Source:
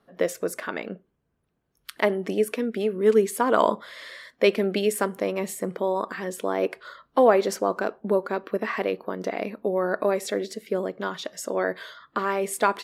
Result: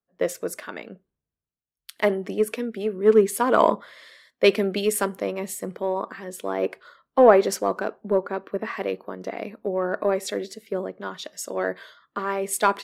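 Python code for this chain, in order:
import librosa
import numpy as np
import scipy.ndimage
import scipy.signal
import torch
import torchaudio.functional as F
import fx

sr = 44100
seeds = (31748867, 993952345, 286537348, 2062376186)

p1 = np.clip(x, -10.0 ** (-17.5 / 20.0), 10.0 ** (-17.5 / 20.0))
p2 = x + (p1 * 10.0 ** (-9.5 / 20.0))
p3 = fx.band_widen(p2, sr, depth_pct=70)
y = p3 * 10.0 ** (-2.5 / 20.0)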